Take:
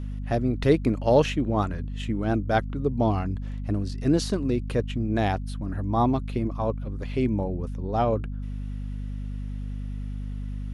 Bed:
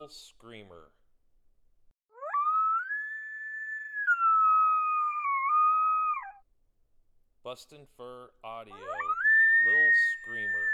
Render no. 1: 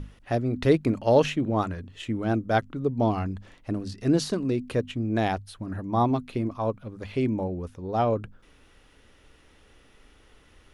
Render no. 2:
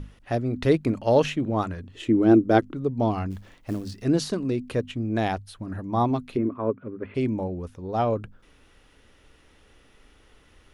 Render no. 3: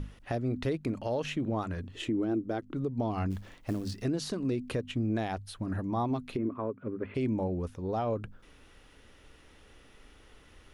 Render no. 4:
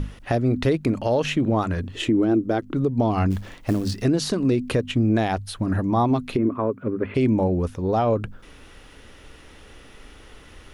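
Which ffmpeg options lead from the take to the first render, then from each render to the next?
-af "bandreject=f=50:t=h:w=6,bandreject=f=100:t=h:w=6,bandreject=f=150:t=h:w=6,bandreject=f=200:t=h:w=6,bandreject=f=250:t=h:w=6"
-filter_complex "[0:a]asettb=1/sr,asplit=3[a][b][c];[a]atrim=end=1.944[d];[b]atrim=start=1.94:end=2.74,asetpts=PTS-STARTPTS,afade=t=in:d=0.004:c=qsin,afade=t=out:st=0.796:d=0.004:c=qsin,equalizer=f=340:w=1.5:g=14[e];[c]atrim=start=2.736[f];[d][e]acrossfade=d=0.004:c1=hsin:c2=qsin[g];[g][f]acrossfade=d=0.004:c1=qsin:c2=hsin,asplit=3[h][i][j];[h]afade=t=out:st=3.3:d=0.02[k];[i]acrusher=bits=6:mode=log:mix=0:aa=0.000001,afade=t=in:st=3.3:d=0.02,afade=t=out:st=4.02:d=0.02[l];[j]afade=t=in:st=4.02:d=0.02[m];[k][l][m]amix=inputs=3:normalize=0,asplit=3[n][o][p];[n]afade=t=out:st=6.36:d=0.02[q];[o]highpass=120,equalizer=f=270:t=q:w=4:g=8,equalizer=f=400:t=q:w=4:g=10,equalizer=f=770:t=q:w=4:g=-9,equalizer=f=1.4k:t=q:w=4:g=3,lowpass=f=2.2k:w=0.5412,lowpass=f=2.2k:w=1.3066,afade=t=in:st=6.36:d=0.02,afade=t=out:st=7.14:d=0.02[r];[p]afade=t=in:st=7.14:d=0.02[s];[q][r][s]amix=inputs=3:normalize=0"
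-af "acompressor=threshold=-26dB:ratio=2,alimiter=limit=-22.5dB:level=0:latency=1:release=177"
-af "volume=10.5dB"

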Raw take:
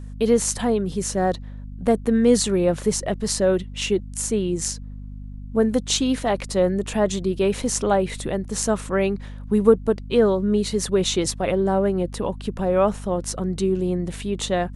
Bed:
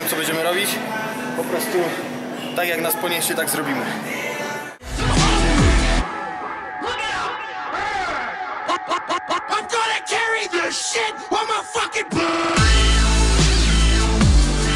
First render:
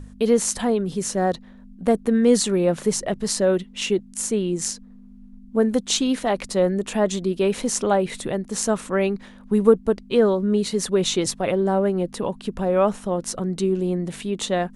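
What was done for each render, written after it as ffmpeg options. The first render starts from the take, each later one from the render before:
-af "bandreject=f=50:t=h:w=4,bandreject=f=100:t=h:w=4,bandreject=f=150:t=h:w=4"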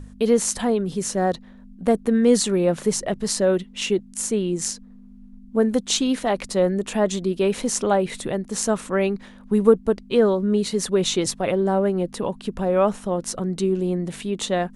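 -af anull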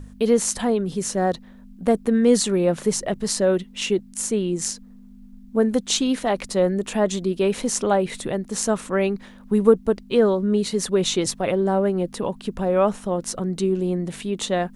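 -af "acrusher=bits=11:mix=0:aa=0.000001"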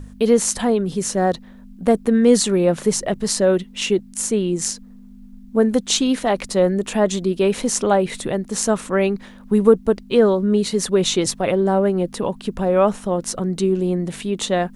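-af "volume=3dB,alimiter=limit=-1dB:level=0:latency=1"

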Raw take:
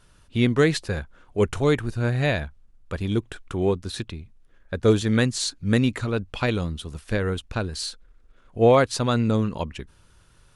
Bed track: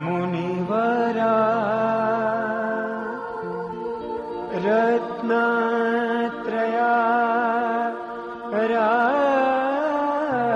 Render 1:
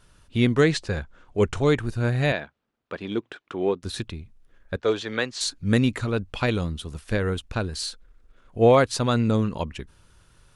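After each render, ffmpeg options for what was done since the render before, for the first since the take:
-filter_complex "[0:a]asettb=1/sr,asplit=3[a][b][c];[a]atrim=end=0.614[d];[b]atrim=start=0.61:end=1.8,asetpts=PTS-STARTPTS,afade=t=in:d=0.004:c=qsin,afade=t=out:st=1.186:d=0.004:c=qsin,lowpass=f=8.5k:w=0.5412,lowpass=f=8.5k:w=1.3066[e];[c]atrim=start=1.796[f];[d][e]acrossfade=d=0.004:c1=hsin:c2=qsin[g];[g][f]acrossfade=d=0.004:c1=qsin:c2=hsin,asettb=1/sr,asplit=3[h][i][j];[h]atrim=end=2.324[k];[i]atrim=start=2.32:end=3.83,asetpts=PTS-STARTPTS,afade=t=in:d=0.004:c=qsin,afade=t=out:st=1.506:d=0.004:c=qsin,highpass=260,lowpass=4k[l];[j]atrim=start=3.826[m];[k][l]acrossfade=d=0.004:c1=hsin:c2=qsin[n];[n][m]acrossfade=d=0.004:c1=qsin:c2=hsin,asettb=1/sr,asplit=3[o][p][q];[o]atrim=end=4.764[r];[p]atrim=start=4.76:end=5.41,asetpts=PTS-STARTPTS,afade=t=in:d=0.004:c=qsin,afade=t=out:st=0.646:d=0.004:c=qsin,acrossover=split=380 5700:gain=0.126 1 0.0708[s][t][u];[s][t][u]amix=inputs=3:normalize=0[v];[q]atrim=start=5.406[w];[r][v]acrossfade=d=0.004:c1=hsin:c2=qsin[x];[x][w]acrossfade=d=0.004:c1=qsin:c2=hsin"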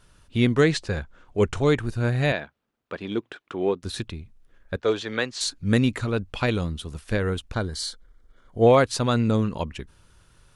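-filter_complex "[0:a]asettb=1/sr,asplit=3[a][b][c];[a]atrim=end=7.534[d];[b]atrim=start=7.53:end=8.67,asetpts=PTS-STARTPTS,afade=t=in:d=0.004:c=qsin,afade=t=out:st=1.136:d=0.004:c=qsin,asuperstop=centerf=2600:order=12:qfactor=6[e];[c]atrim=start=8.666[f];[d][e]acrossfade=d=0.004:c1=hsin:c2=qsin[g];[g][f]acrossfade=d=0.004:c1=qsin:c2=hsin"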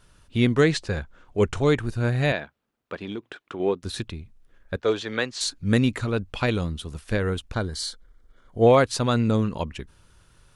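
-filter_complex "[0:a]asettb=1/sr,asplit=3[a][b][c];[a]atrim=end=2.944[d];[b]atrim=start=2.94:end=3.6,asetpts=PTS-STARTPTS,afade=t=in:d=0.004:c=qsin,afade=t=out:st=0.656:d=0.004:c=qsin,acompressor=threshold=-28dB:ratio=6:attack=3.2:release=140:knee=1:detection=peak[e];[c]atrim=start=3.596[f];[d][e]acrossfade=d=0.004:c1=hsin:c2=qsin[g];[g][f]acrossfade=d=0.004:c1=qsin:c2=hsin"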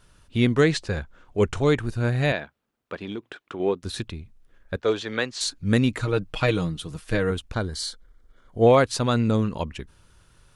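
-filter_complex "[0:a]asettb=1/sr,asplit=3[a][b][c];[a]atrim=end=5.984[d];[b]atrim=start=5.98:end=7.31,asetpts=PTS-STARTPTS,afade=t=in:d=0.004:c=qsin,afade=t=out:st=1.326:d=0.004:c=qsin,aecho=1:1:6.4:0.65,atrim=end_sample=58653[e];[c]atrim=start=7.306[f];[d][e]acrossfade=d=0.004:c1=hsin:c2=qsin[g];[g][f]acrossfade=d=0.004:c1=qsin:c2=hsin"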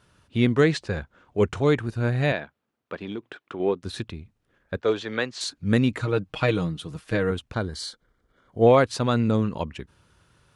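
-af "highpass=78,highshelf=f=5.1k:g=-7.5"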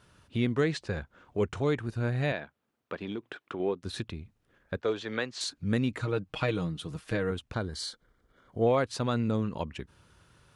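-af "acompressor=threshold=-37dB:ratio=1.5"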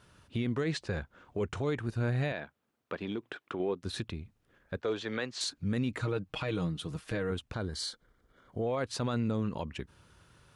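-af "alimiter=limit=-23.5dB:level=0:latency=1:release=29"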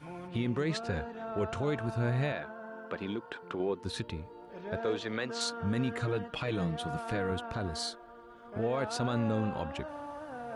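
-filter_complex "[1:a]volume=-20dB[a];[0:a][a]amix=inputs=2:normalize=0"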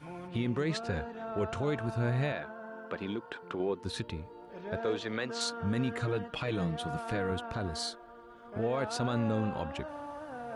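-af anull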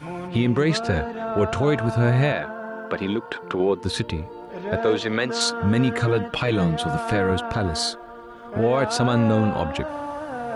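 -af "volume=11.5dB"

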